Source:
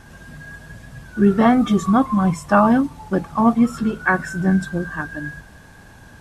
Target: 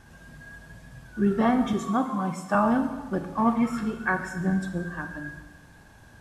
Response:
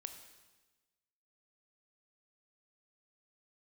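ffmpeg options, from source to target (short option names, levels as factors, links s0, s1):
-filter_complex "[0:a]asettb=1/sr,asplit=3[s0][s1][s2];[s0]atrim=end=1.734[s3];[s1]atrim=start=1.73:end=2.55,asetpts=PTS-STARTPTS,afade=t=in:d=0.004:c=qsin,afade=t=out:st=0.816:d=0.004:c=qsin,highpass=200[s4];[s2]atrim=start=2.546[s5];[s3][s4]acrossfade=d=0.004:c1=hsin:c2=qsin[s6];[s6][s5]acrossfade=d=0.004:c1=qsin:c2=hsin,asettb=1/sr,asplit=3[s7][s8][s9];[s7]atrim=end=3.394[s10];[s8]atrim=start=3.39:end=3.84,asetpts=PTS-STARTPTS,afade=t=in:d=0.004:c=qsin,afade=t=out:st=0.446:d=0.004:c=qsin,equalizer=f=1900:t=o:w=1:g=9.5[s11];[s9]atrim=start=3.836[s12];[s10][s11]acrossfade=d=0.004:c1=hsin:c2=qsin[s13];[s13][s12]acrossfade=d=0.004:c1=qsin:c2=hsin[s14];[1:a]atrim=start_sample=2205[s15];[s14][s15]afir=irnorm=-1:irlink=0,volume=0.668"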